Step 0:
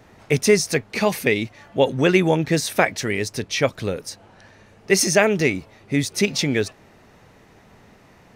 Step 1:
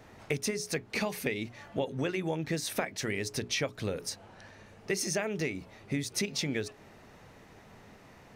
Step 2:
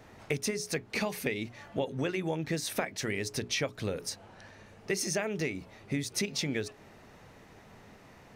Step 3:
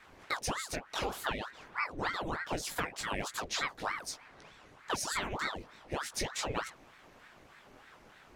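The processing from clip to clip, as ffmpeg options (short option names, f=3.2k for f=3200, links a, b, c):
-af "acompressor=threshold=-25dB:ratio=10,bandreject=f=60:t=h:w=6,bandreject=f=120:t=h:w=6,bandreject=f=180:t=h:w=6,bandreject=f=240:t=h:w=6,bandreject=f=300:t=h:w=6,bandreject=f=360:t=h:w=6,bandreject=f=420:t=h:w=6,volume=-3dB"
-af anull
-af "flanger=delay=17:depth=3.5:speed=0.44,aeval=exprs='val(0)*sin(2*PI*950*n/s+950*0.85/3.3*sin(2*PI*3.3*n/s))':c=same,volume=2.5dB"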